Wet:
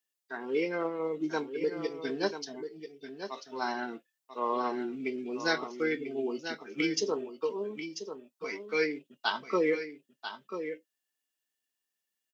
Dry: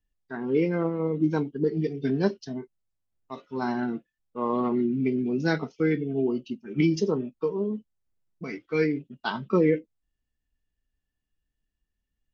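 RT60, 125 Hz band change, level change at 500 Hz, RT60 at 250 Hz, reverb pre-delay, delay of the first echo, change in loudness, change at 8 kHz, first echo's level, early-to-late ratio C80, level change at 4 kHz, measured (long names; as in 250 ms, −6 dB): no reverb audible, −19.5 dB, −4.5 dB, no reverb audible, no reverb audible, 990 ms, −6.5 dB, can't be measured, −9.5 dB, no reverb audible, +4.5 dB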